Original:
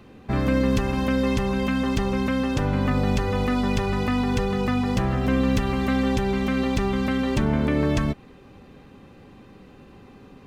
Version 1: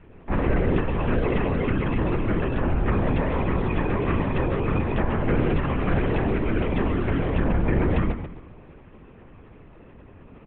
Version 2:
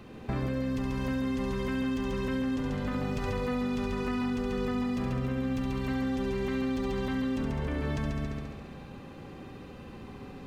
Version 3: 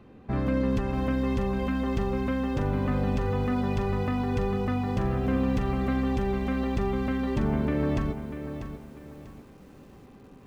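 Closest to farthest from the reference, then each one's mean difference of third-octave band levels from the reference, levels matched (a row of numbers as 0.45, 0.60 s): 3, 2, 1; 3.5, 5.0, 7.0 dB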